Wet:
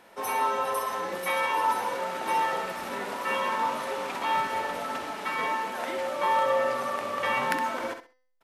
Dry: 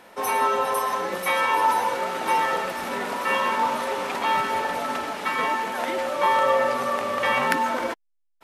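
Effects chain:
hum removal 255.5 Hz, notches 24
on a send: repeating echo 65 ms, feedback 22%, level −8.5 dB
on the sum: level −5.5 dB

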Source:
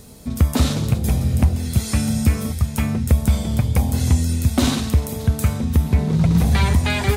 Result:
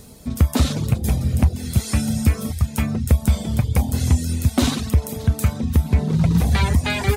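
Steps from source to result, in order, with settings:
reverb reduction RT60 0.5 s

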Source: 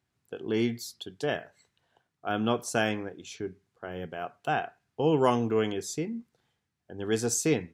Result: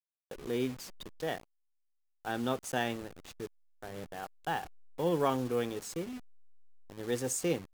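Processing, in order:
hold until the input has moved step −36.5 dBFS
pitch shifter +1.5 semitones
level −5.5 dB

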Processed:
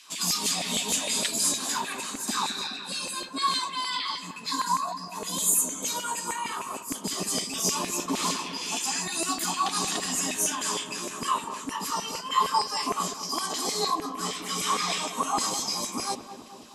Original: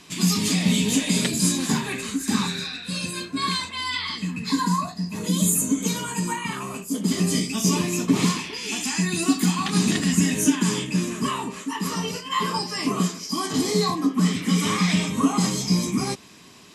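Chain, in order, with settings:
octave-band graphic EQ 125/250/2,000 Hz +10/+7/−12 dB
auto-filter high-pass saw down 6.5 Hz 590–2,300 Hz
on a send: feedback echo with a low-pass in the loop 211 ms, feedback 74%, low-pass 1,000 Hz, level −9 dB

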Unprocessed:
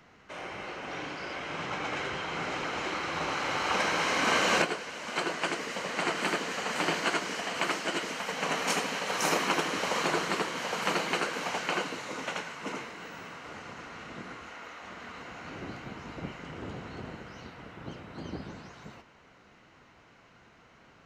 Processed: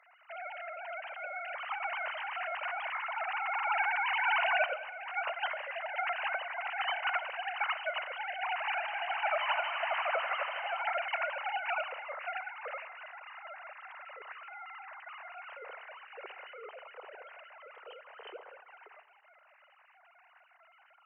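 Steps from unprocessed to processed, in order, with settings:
three sine waves on the formant tracks
high-pass filter 460 Hz 24 dB per octave
0:08.65–0:10.82: echo machine with several playback heads 81 ms, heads all three, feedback 67%, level −16 dB
four-comb reverb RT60 1.2 s, combs from 28 ms, DRR 16.5 dB
level −3.5 dB

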